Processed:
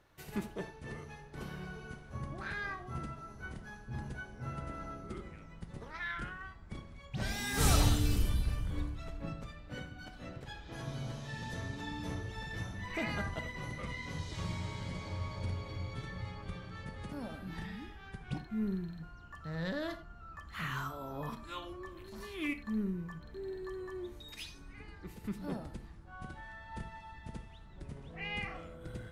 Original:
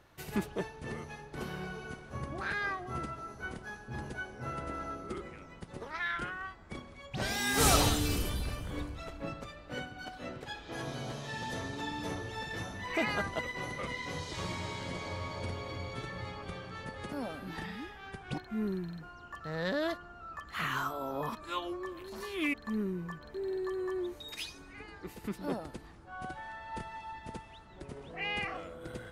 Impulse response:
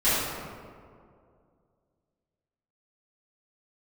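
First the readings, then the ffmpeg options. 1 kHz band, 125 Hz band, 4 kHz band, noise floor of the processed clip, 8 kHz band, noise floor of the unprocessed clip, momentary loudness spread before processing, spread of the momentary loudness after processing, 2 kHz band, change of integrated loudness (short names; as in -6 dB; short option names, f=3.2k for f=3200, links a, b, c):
-6.0 dB, +2.0 dB, -5.0 dB, -52 dBFS, -5.0 dB, -52 dBFS, 12 LU, 12 LU, -5.0 dB, -3.0 dB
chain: -filter_complex "[0:a]asubboost=boost=2.5:cutoff=220,asplit=2[a][b];[1:a]atrim=start_sample=2205,atrim=end_sample=4410[c];[b][c]afir=irnorm=-1:irlink=0,volume=-22dB[d];[a][d]amix=inputs=2:normalize=0,volume=-6dB"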